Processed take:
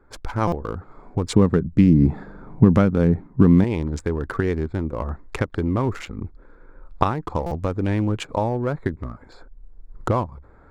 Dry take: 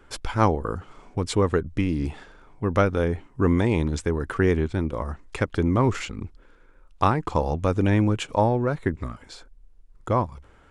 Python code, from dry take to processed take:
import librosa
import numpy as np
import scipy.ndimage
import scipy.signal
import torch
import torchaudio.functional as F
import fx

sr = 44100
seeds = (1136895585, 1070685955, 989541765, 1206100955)

y = fx.wiener(x, sr, points=15)
y = fx.recorder_agc(y, sr, target_db=-9.5, rise_db_per_s=13.0, max_gain_db=30)
y = fx.peak_eq(y, sr, hz=180.0, db=13.5, octaves=1.3, at=(1.36, 3.64))
y = fx.buffer_glitch(y, sr, at_s=(0.47, 7.46), block=256, repeats=8)
y = y * librosa.db_to_amplitude(-3.0)